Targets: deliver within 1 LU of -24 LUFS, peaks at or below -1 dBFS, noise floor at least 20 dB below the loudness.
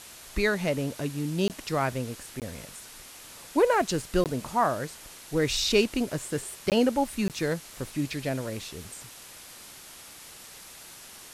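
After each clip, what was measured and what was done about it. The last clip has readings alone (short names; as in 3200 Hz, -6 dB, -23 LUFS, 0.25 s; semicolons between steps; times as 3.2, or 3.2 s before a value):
dropouts 5; longest dropout 18 ms; noise floor -47 dBFS; noise floor target -49 dBFS; loudness -28.5 LUFS; peak -10.5 dBFS; loudness target -24.0 LUFS
-> interpolate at 1.48/2.4/4.24/6.7/7.28, 18 ms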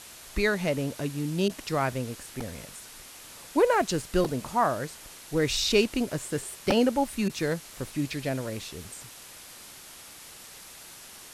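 dropouts 0; noise floor -47 dBFS; noise floor target -48 dBFS
-> denoiser 6 dB, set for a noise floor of -47 dBFS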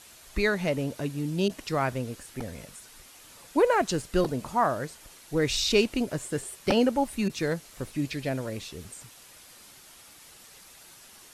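noise floor -52 dBFS; loudness -28.0 LUFS; peak -10.5 dBFS; loudness target -24.0 LUFS
-> gain +4 dB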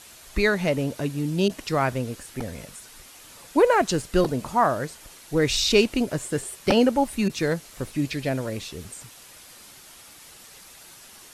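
loudness -24.0 LUFS; peak -6.5 dBFS; noise floor -48 dBFS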